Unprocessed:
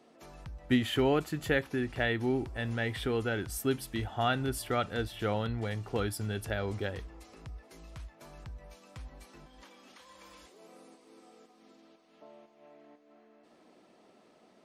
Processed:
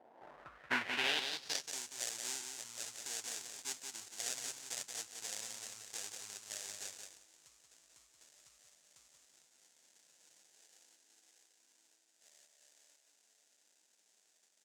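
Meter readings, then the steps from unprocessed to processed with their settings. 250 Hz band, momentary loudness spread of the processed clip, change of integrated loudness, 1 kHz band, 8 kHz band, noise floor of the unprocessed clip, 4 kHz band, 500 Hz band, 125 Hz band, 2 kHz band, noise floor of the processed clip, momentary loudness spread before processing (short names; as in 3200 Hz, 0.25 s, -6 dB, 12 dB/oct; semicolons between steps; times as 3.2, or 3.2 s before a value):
-23.0 dB, 12 LU, -8.0 dB, -12.0 dB, +6.5 dB, -63 dBFS, -0.5 dB, -20.5 dB, -32.0 dB, -6.0 dB, -74 dBFS, 21 LU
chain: sample-rate reducer 1200 Hz, jitter 20%; feedback echo 0.179 s, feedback 15%, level -5.5 dB; band-pass sweep 740 Hz -> 7100 Hz, 0.03–1.76; gain +6 dB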